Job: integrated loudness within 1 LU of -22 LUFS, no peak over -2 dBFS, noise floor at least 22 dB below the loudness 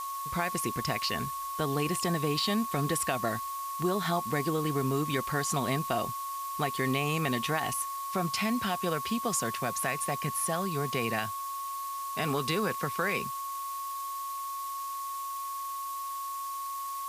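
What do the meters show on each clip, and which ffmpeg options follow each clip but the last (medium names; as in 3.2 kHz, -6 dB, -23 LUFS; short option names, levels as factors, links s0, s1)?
steady tone 1.1 kHz; tone level -34 dBFS; noise floor -37 dBFS; noise floor target -54 dBFS; loudness -31.5 LUFS; peak level -13.5 dBFS; loudness target -22.0 LUFS
-> -af "bandreject=f=1100:w=30"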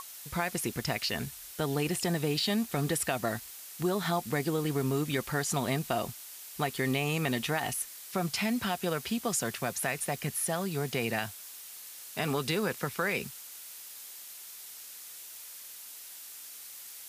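steady tone not found; noise floor -47 dBFS; noise floor target -54 dBFS
-> -af "afftdn=nr=7:nf=-47"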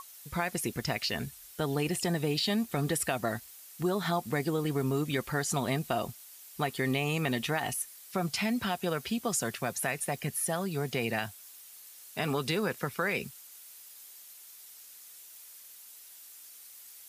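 noise floor -51 dBFS; noise floor target -54 dBFS
-> -af "afftdn=nr=6:nf=-51"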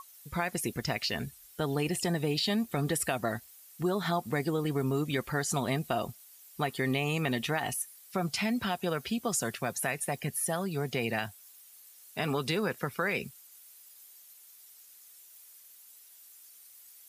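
noise floor -55 dBFS; loudness -32.0 LUFS; peak level -15.0 dBFS; loudness target -22.0 LUFS
-> -af "volume=3.16"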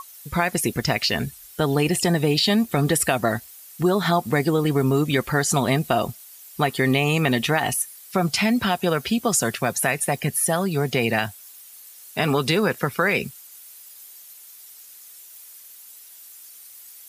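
loudness -22.0 LUFS; peak level -5.0 dBFS; noise floor -45 dBFS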